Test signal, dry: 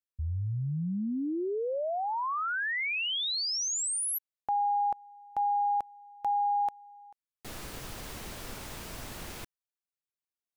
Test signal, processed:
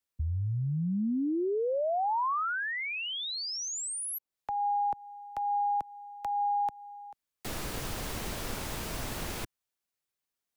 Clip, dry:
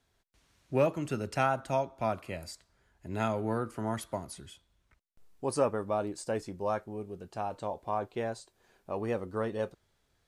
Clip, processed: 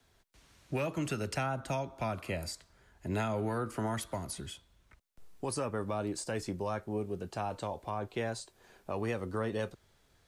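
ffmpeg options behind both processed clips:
ffmpeg -i in.wav -filter_complex "[0:a]acrossover=split=360|1000[link_01][link_02][link_03];[link_01]acompressor=threshold=-36dB:ratio=4[link_04];[link_02]acompressor=threshold=-37dB:ratio=4[link_05];[link_03]acompressor=threshold=-43dB:ratio=4[link_06];[link_04][link_05][link_06]amix=inputs=3:normalize=0,acrossover=split=110|1400|2300[link_07][link_08][link_09][link_10];[link_08]alimiter=level_in=8.5dB:limit=-24dB:level=0:latency=1:release=239,volume=-8.5dB[link_11];[link_07][link_11][link_09][link_10]amix=inputs=4:normalize=0,volume=6dB" out.wav

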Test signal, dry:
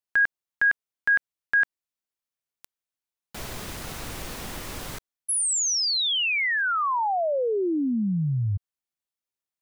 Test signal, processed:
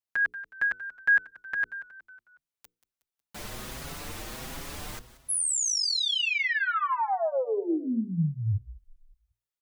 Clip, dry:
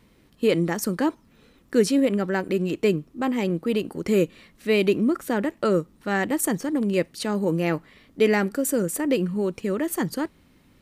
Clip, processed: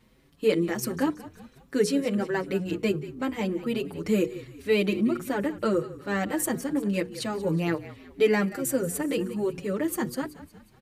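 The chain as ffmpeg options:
ffmpeg -i in.wav -filter_complex "[0:a]bandreject=frequency=60:width_type=h:width=6,bandreject=frequency=120:width_type=h:width=6,bandreject=frequency=180:width_type=h:width=6,bandreject=frequency=240:width_type=h:width=6,bandreject=frequency=300:width_type=h:width=6,bandreject=frequency=360:width_type=h:width=6,bandreject=frequency=420:width_type=h:width=6,bandreject=frequency=480:width_type=h:width=6,asplit=5[link_01][link_02][link_03][link_04][link_05];[link_02]adelay=183,afreqshift=-42,volume=-16.5dB[link_06];[link_03]adelay=366,afreqshift=-84,volume=-22.7dB[link_07];[link_04]adelay=549,afreqshift=-126,volume=-28.9dB[link_08];[link_05]adelay=732,afreqshift=-168,volume=-35.1dB[link_09];[link_01][link_06][link_07][link_08][link_09]amix=inputs=5:normalize=0,asplit=2[link_10][link_11];[link_11]adelay=6,afreqshift=1.4[link_12];[link_10][link_12]amix=inputs=2:normalize=1" out.wav

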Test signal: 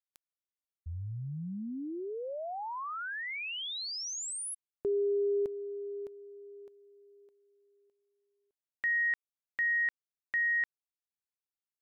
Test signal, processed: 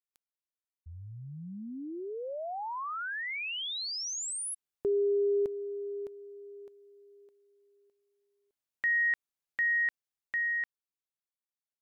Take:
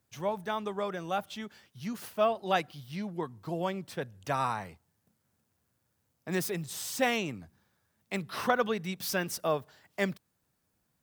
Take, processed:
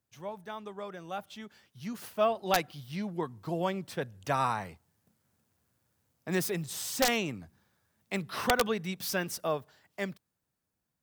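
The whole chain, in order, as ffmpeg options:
ffmpeg -i in.wav -af "dynaudnorm=framelen=280:gausssize=13:maxgain=10dB,aeval=exprs='(mod(2.11*val(0)+1,2)-1)/2.11':channel_layout=same,volume=-8dB" out.wav

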